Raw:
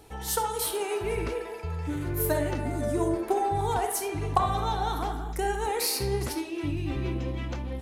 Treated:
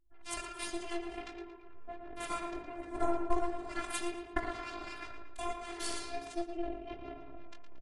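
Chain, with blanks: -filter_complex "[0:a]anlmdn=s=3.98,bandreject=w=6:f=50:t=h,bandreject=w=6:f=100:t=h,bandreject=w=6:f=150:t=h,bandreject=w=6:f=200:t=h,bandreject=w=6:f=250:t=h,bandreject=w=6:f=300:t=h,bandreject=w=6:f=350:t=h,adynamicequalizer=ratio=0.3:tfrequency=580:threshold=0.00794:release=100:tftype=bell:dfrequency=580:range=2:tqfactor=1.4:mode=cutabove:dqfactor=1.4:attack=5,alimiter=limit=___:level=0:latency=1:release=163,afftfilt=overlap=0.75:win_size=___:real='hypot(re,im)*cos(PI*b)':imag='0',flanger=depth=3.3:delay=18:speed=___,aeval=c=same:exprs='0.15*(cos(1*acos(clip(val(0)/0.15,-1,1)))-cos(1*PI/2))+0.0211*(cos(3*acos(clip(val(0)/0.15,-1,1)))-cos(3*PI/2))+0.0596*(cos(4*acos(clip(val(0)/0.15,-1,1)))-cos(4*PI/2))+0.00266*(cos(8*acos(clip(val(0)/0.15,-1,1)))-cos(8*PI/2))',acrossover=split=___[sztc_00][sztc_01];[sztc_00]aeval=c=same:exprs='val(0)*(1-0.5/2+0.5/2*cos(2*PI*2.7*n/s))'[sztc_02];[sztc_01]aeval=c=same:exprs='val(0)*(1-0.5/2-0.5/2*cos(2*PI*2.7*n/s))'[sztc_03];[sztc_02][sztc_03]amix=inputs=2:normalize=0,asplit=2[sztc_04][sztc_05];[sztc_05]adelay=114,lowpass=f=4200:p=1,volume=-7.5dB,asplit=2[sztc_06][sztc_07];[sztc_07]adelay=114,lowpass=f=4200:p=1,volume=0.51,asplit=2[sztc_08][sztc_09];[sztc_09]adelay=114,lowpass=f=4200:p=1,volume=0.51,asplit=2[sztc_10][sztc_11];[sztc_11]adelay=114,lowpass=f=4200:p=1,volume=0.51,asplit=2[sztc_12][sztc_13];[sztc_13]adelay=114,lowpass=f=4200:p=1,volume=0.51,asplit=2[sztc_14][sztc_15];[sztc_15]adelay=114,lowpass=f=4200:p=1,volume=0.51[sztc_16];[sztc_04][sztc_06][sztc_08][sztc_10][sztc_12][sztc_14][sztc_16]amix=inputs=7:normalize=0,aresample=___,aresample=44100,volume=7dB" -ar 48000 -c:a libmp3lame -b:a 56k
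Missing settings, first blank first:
-16dB, 512, 1.4, 1000, 22050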